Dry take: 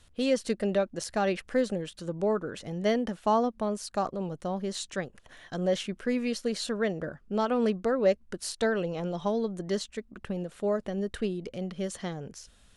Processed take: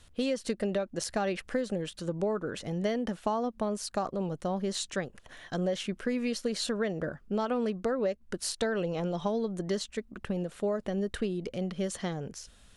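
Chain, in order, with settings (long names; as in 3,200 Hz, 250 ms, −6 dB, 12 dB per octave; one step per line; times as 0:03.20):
downward compressor 10 to 1, threshold −28 dBFS, peak gain reduction 10.5 dB
level +2 dB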